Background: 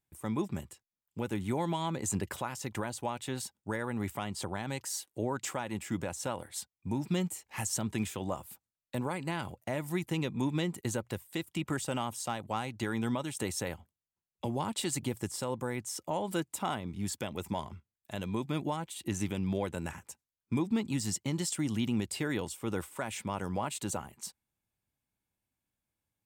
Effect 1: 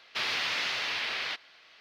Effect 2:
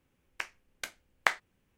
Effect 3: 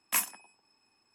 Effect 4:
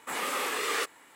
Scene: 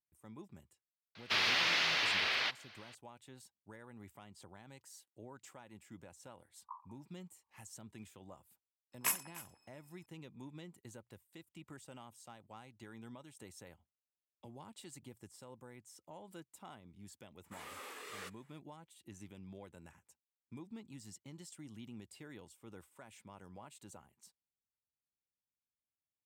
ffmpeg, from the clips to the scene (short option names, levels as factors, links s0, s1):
-filter_complex "[3:a]asplit=2[s0][s1];[0:a]volume=0.112[s2];[s0]asuperpass=centerf=1000:order=8:qfactor=3.1[s3];[s1]aecho=1:1:299:0.126[s4];[1:a]atrim=end=1.8,asetpts=PTS-STARTPTS,volume=0.944,afade=t=in:d=0.004:c=hsin,afade=t=out:st=1.796:d=0.004:c=hsin,adelay=1150[s5];[s3]atrim=end=1.14,asetpts=PTS-STARTPTS,volume=0.355,afade=t=in:d=0.004:c=hsin,afade=t=out:st=1.136:d=0.004:c=hsin,adelay=6560[s6];[s4]atrim=end=1.14,asetpts=PTS-STARTPTS,volume=0.531,afade=t=in:d=0.004:c=hsin,afade=t=out:st=1.136:d=0.004:c=hsin,adelay=8920[s7];[4:a]atrim=end=1.15,asetpts=PTS-STARTPTS,volume=0.126,afade=t=in:d=0.004:c=hsin,afade=t=out:st=1.146:d=0.004:c=hsin,adelay=17440[s8];[s2][s5][s6][s7][s8]amix=inputs=5:normalize=0"